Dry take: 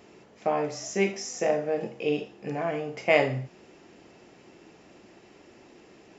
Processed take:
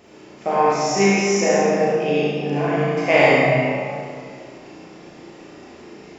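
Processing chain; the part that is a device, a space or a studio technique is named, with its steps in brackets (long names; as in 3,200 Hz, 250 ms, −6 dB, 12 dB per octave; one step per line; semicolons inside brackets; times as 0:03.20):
tunnel (flutter between parallel walls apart 6 metres, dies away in 0.56 s; convolution reverb RT60 2.3 s, pre-delay 42 ms, DRR −5.5 dB)
level +2.5 dB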